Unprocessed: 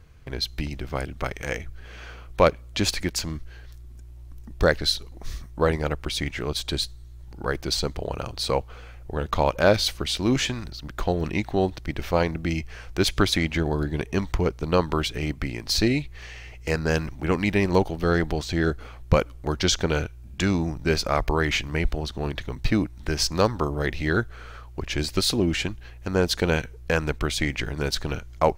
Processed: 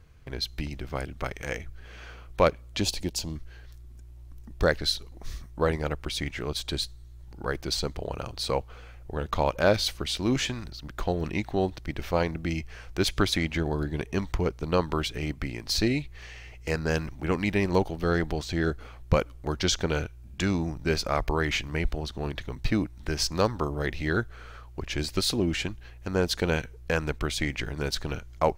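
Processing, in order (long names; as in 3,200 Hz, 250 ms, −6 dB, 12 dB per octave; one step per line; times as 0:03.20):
0:02.81–0:03.36: flat-topped bell 1,600 Hz −11.5 dB 1.2 octaves
level −3.5 dB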